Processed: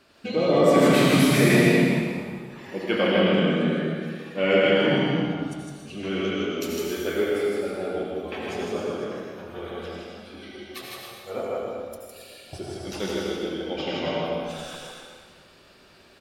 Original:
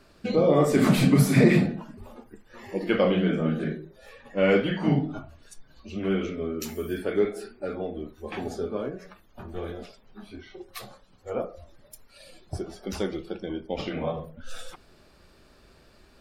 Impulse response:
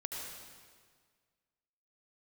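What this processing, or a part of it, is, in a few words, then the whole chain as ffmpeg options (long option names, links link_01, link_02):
stadium PA: -filter_complex "[0:a]highpass=frequency=160:poles=1,equalizer=frequency=3000:width_type=o:width=0.94:gain=5.5,aecho=1:1:157.4|274.1:0.708|0.316[link_01];[1:a]atrim=start_sample=2205[link_02];[link_01][link_02]afir=irnorm=-1:irlink=0,volume=1.5dB"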